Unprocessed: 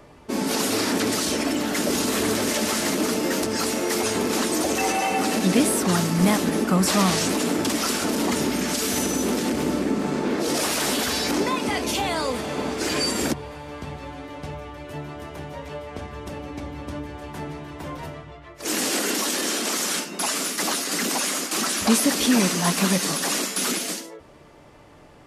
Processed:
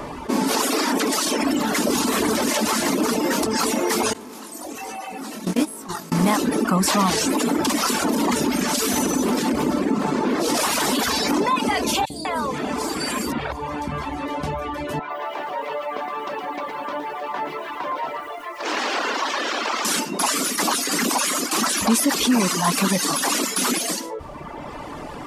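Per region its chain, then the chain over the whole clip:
0.6–1.42 HPF 240 Hz + notch 4100 Hz, Q 30
4.13–6.12 gate -18 dBFS, range -22 dB + high shelf 9500 Hz +7 dB + chorus 1.2 Hz, delay 18 ms, depth 6.2 ms
12.05–14.26 dynamic EQ 6200 Hz, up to -4 dB, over -43 dBFS, Q 2.9 + compressor 2.5:1, threshold -30 dBFS + three bands offset in time highs, lows, mids 50/200 ms, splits 470/4000 Hz
14.99–19.85 HPF 560 Hz + air absorption 210 m + lo-fi delay 0.114 s, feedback 35%, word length 10-bit, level -4.5 dB
whole clip: reverb removal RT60 1.1 s; fifteen-band EQ 100 Hz -6 dB, 250 Hz +4 dB, 1000 Hz +7 dB; fast leveller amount 50%; gain -3 dB

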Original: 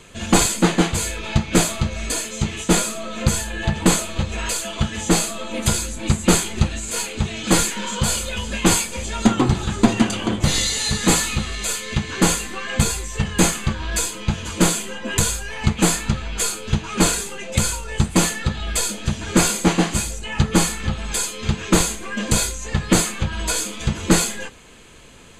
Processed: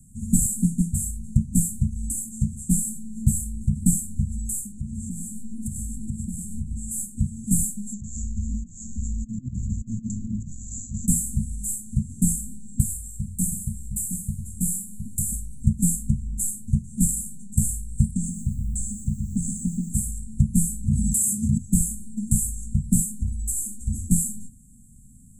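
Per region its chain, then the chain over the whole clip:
4.72–6.9 high shelf 9000 Hz -11 dB + compressor 12:1, threshold -23 dBFS + echo 0.1 s -8 dB
7.93–11.08 bell 160 Hz -5.5 dB 0.81 oct + negative-ratio compressor -24 dBFS, ratio -0.5 + careless resampling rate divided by 3×, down none, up filtered
12.8–15.33 high shelf 8600 Hz +10 dB + resonator 93 Hz, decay 0.91 s + echo 0.714 s -6.5 dB
18.11–19.9 LPF 7300 Hz 24 dB/oct + compressor 4:1, threshold -16 dBFS + lo-fi delay 0.124 s, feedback 35%, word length 8-bit, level -7 dB
20.87–21.58 HPF 90 Hz + fast leveller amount 100%
23.22–24.11 fixed phaser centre 400 Hz, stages 4 + sustainer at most 53 dB/s
whole clip: Chebyshev band-stop 240–7700 Hz, order 5; dynamic EQ 420 Hz, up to -5 dB, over -38 dBFS, Q 1.2

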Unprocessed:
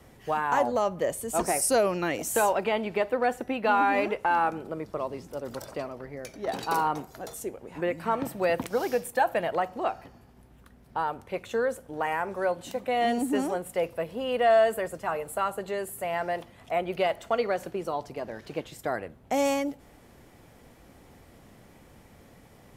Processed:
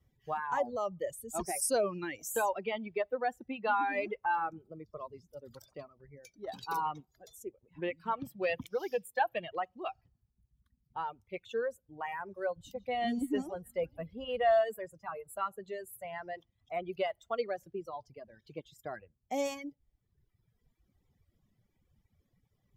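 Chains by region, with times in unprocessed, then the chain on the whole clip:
6.83–11.57 dynamic EQ 2800 Hz, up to +6 dB, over -50 dBFS, Q 1.8 + Doppler distortion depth 0.17 ms
12.56–14.62 low shelf 120 Hz +11.5 dB + delay with a stepping band-pass 0.154 s, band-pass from 4300 Hz, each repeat -1.4 oct, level -7 dB
whole clip: per-bin expansion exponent 1.5; reverb removal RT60 1.3 s; gain -4 dB

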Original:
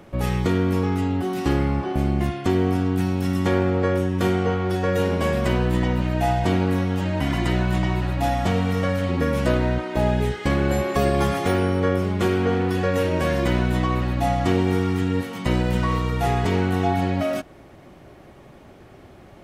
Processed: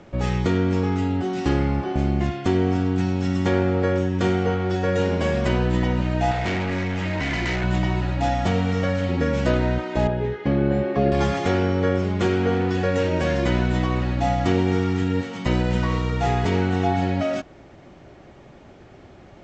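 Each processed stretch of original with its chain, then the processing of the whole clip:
6.31–7.64 bell 2100 Hz +10.5 dB 0.57 oct + hard clip -21.5 dBFS
10.07–11.12 HPF 110 Hz + tape spacing loss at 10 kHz 31 dB + doubler 14 ms -5 dB
whole clip: steep low-pass 7700 Hz 96 dB/oct; notch 1100 Hz, Q 24

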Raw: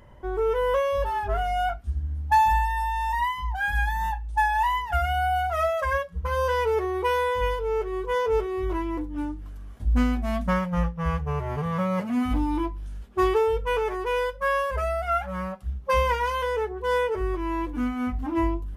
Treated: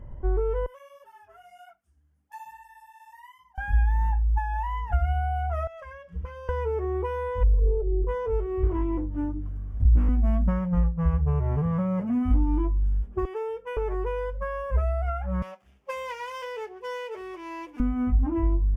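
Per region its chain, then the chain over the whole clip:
0.66–3.58 HPF 96 Hz + differentiator + tape flanging out of phase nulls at 1.5 Hz, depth 6 ms
5.67–6.49 weighting filter D + compressor 10:1, threshold -36 dBFS
7.43–8.07 formant sharpening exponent 3 + dynamic EQ 950 Hz, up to -3 dB, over -41 dBFS, Q 0.98 + Doppler distortion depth 0.37 ms
8.63–10.09 bell 89 Hz +7.5 dB 1.4 oct + notches 50/100/150/200/250/300/350/400/450 Hz + Doppler distortion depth 0.89 ms
13.25–13.77 HPF 650 Hz + bell 1100 Hz -7.5 dB 0.61 oct
15.42–17.8 median filter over 15 samples + HPF 660 Hz + resonant high shelf 1900 Hz +10 dB, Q 1.5
whole clip: bell 4000 Hz -14.5 dB 0.36 oct; compressor, threshold -26 dBFS; tilt -3.5 dB/oct; gain -3.5 dB

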